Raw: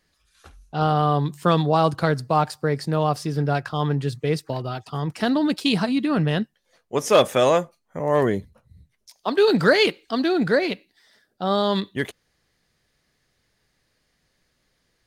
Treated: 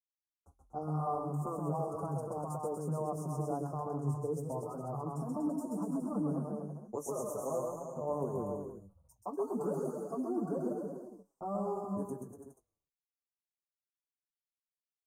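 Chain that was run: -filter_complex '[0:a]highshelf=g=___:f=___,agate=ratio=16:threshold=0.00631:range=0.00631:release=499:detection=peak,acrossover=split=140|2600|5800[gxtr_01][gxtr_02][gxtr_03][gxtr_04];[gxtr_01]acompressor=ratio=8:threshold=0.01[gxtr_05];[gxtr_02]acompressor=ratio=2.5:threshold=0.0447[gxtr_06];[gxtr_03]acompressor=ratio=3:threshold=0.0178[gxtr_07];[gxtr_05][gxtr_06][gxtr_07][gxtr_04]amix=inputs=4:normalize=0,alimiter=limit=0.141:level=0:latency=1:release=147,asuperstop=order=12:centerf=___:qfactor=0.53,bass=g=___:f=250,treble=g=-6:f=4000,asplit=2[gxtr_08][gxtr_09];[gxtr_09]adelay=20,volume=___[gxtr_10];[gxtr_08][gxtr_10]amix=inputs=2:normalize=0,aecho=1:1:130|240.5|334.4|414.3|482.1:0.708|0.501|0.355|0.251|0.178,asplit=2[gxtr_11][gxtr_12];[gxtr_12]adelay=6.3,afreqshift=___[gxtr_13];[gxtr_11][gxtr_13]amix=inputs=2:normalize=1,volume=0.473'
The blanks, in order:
5, 4000, 2800, -1, 0.237, -2.6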